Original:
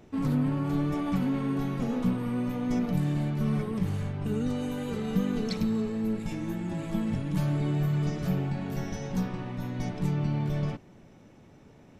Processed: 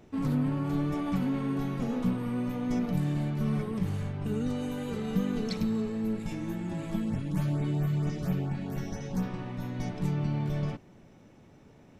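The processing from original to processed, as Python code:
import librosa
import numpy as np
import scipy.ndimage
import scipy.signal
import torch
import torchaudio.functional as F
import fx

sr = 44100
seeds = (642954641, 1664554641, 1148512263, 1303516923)

y = fx.filter_lfo_notch(x, sr, shape='saw_up', hz=4.4, low_hz=490.0, high_hz=5800.0, q=1.3, at=(6.96, 9.23))
y = F.gain(torch.from_numpy(y), -1.5).numpy()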